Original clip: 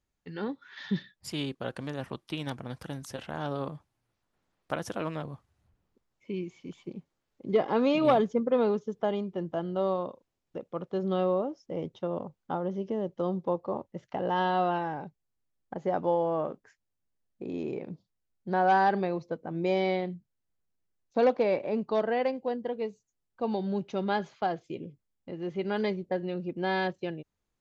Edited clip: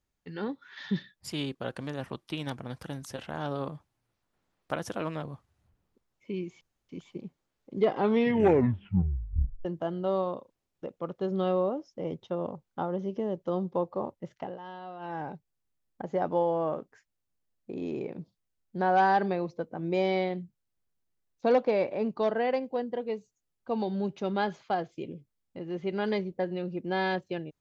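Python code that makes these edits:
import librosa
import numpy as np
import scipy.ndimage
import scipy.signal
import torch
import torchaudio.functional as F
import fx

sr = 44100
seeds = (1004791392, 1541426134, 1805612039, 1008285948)

y = fx.edit(x, sr, fx.insert_room_tone(at_s=6.61, length_s=0.28),
    fx.tape_stop(start_s=7.62, length_s=1.75),
    fx.fade_down_up(start_s=14.06, length_s=0.89, db=-16.0, fade_s=0.24), tone=tone)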